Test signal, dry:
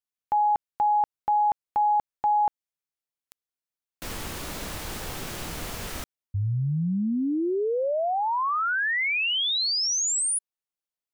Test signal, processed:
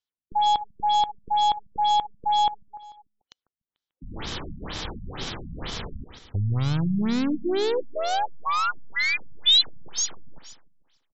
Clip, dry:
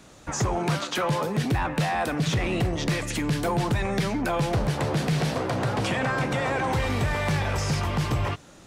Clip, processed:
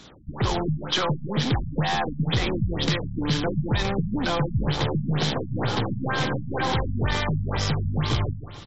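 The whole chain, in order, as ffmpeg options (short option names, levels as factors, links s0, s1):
-af "aeval=exprs='0.126*(cos(1*acos(clip(val(0)/0.126,-1,1)))-cos(1*PI/2))+0.00891*(cos(2*acos(clip(val(0)/0.126,-1,1)))-cos(2*PI/2))+0.00158*(cos(3*acos(clip(val(0)/0.126,-1,1)))-cos(3*PI/2))+0.00631*(cos(5*acos(clip(val(0)/0.126,-1,1)))-cos(5*PI/2))+0.00708*(cos(6*acos(clip(val(0)/0.126,-1,1)))-cos(6*PI/2))':c=same,acrusher=bits=2:mode=log:mix=0:aa=0.000001,superequalizer=8b=0.708:13b=2.51:14b=1.58,aecho=1:1:147|294|441|588|735:0.224|0.112|0.056|0.028|0.014,afftfilt=real='re*lt(b*sr/1024,230*pow(7900/230,0.5+0.5*sin(2*PI*2.1*pts/sr)))':imag='im*lt(b*sr/1024,230*pow(7900/230,0.5+0.5*sin(2*PI*2.1*pts/sr)))':win_size=1024:overlap=0.75"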